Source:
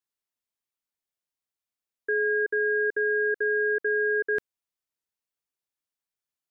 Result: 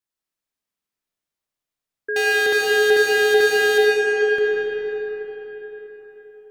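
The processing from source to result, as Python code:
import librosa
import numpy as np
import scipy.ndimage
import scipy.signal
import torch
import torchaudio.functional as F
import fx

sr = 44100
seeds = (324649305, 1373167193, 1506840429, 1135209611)

y = fx.low_shelf(x, sr, hz=350.0, db=3.0)
y = fx.leveller(y, sr, passes=5, at=(2.16, 3.78))
y = fx.rev_freeverb(y, sr, rt60_s=4.5, hf_ratio=0.65, predelay_ms=40, drr_db=-4.0)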